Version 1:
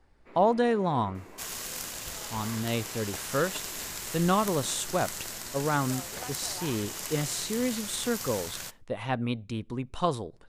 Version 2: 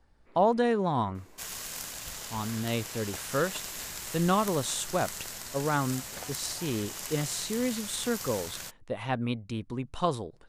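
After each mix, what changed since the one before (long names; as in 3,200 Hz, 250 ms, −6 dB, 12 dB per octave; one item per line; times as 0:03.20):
first sound −9.0 dB
reverb: off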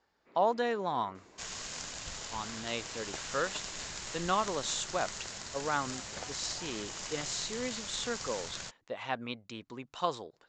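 speech: add high-pass filter 770 Hz 6 dB per octave
master: add Chebyshev low-pass filter 7,200 Hz, order 5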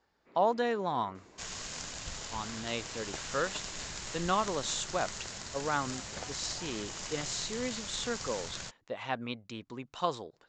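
master: add low-shelf EQ 250 Hz +4 dB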